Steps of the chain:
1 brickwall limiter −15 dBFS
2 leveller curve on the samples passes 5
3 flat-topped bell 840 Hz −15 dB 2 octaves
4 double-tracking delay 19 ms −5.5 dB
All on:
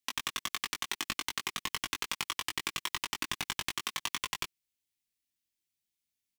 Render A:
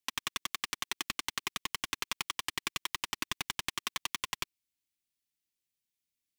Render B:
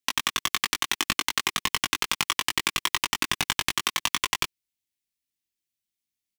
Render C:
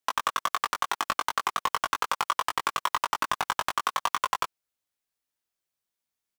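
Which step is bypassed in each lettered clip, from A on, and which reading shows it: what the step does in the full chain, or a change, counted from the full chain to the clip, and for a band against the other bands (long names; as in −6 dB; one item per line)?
4, change in integrated loudness −1.0 LU
1, average gain reduction 7.0 dB
3, change in crest factor −9.5 dB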